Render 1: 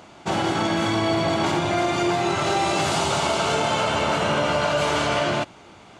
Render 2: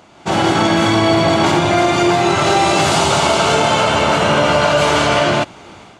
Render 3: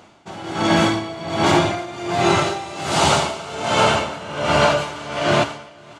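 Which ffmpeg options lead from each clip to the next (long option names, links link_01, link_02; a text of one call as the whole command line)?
ffmpeg -i in.wav -af "dynaudnorm=framelen=110:gausssize=5:maxgain=10.5dB" out.wav
ffmpeg -i in.wav -af "flanger=delay=8.5:depth=6.4:regen=-63:speed=0.51:shape=triangular,aecho=1:1:498|996|1494|1992:0.224|0.101|0.0453|0.0204,aeval=exprs='val(0)*pow(10,-18*(0.5-0.5*cos(2*PI*1.3*n/s))/20)':channel_layout=same,volume=3.5dB" out.wav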